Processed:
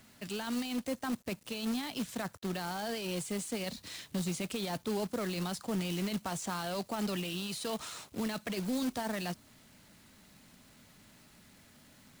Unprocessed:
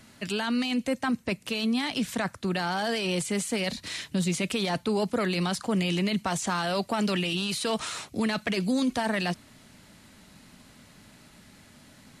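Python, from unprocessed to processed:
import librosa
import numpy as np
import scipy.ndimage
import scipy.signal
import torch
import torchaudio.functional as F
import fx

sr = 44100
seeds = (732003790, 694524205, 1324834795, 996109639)

y = fx.quant_companded(x, sr, bits=4)
y = fx.dynamic_eq(y, sr, hz=2100.0, q=1.0, threshold_db=-44.0, ratio=4.0, max_db=-4)
y = y * 10.0 ** (-8.0 / 20.0)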